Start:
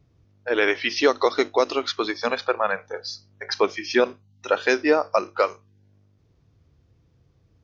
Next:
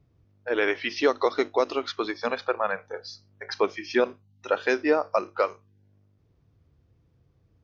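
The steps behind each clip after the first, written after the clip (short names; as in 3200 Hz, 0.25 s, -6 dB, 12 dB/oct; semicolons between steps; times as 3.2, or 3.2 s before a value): high shelf 4000 Hz -8 dB; gain -3 dB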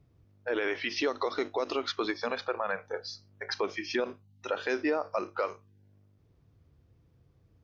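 limiter -19.5 dBFS, peak gain reduction 9.5 dB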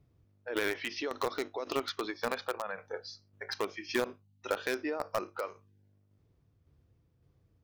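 tremolo saw down 1.8 Hz, depth 45%; in parallel at -7 dB: bit-crush 4-bit; on the sum: gain -2.5 dB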